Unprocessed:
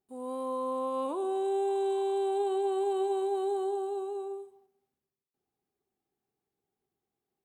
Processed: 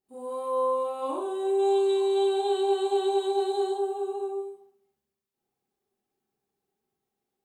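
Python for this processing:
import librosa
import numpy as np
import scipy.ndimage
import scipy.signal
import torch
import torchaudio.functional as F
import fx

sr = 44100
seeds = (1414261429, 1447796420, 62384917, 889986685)

y = fx.peak_eq(x, sr, hz=4300.0, db=12.5, octaves=1.0, at=(1.59, 3.73))
y = fx.rev_schroeder(y, sr, rt60_s=0.31, comb_ms=29, drr_db=-5.5)
y = y * librosa.db_to_amplitude(-3.5)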